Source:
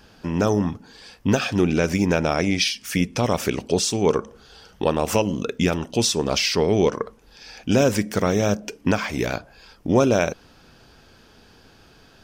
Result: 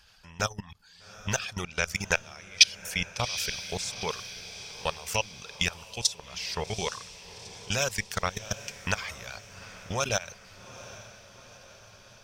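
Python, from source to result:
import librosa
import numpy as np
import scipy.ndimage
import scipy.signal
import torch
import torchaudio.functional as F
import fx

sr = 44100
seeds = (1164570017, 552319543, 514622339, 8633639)

y = fx.dereverb_blind(x, sr, rt60_s=0.53)
y = fx.level_steps(y, sr, step_db=20)
y = fx.transient(y, sr, attack_db=8, sustain_db=-2, at=(2.07, 2.77))
y = fx.tone_stack(y, sr, knobs='10-0-10')
y = fx.echo_diffused(y, sr, ms=807, feedback_pct=56, wet_db=-15.5)
y = fx.rider(y, sr, range_db=3, speed_s=0.5)
y = fx.high_shelf(y, sr, hz=12000.0, db=-6.0)
y = F.gain(torch.from_numpy(y), 4.5).numpy()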